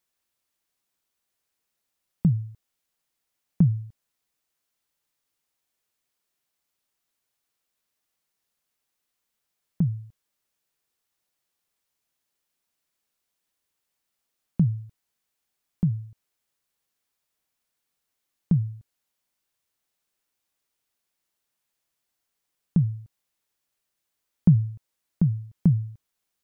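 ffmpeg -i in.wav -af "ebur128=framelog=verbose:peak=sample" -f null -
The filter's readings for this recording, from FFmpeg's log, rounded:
Integrated loudness:
  I:         -25.8 LUFS
  Threshold: -37.1 LUFS
Loudness range:
  LRA:         9.2 LU
  Threshold: -52.6 LUFS
  LRA low:   -36.9 LUFS
  LRA high:  -27.6 LUFS
Sample peak:
  Peak:       -7.1 dBFS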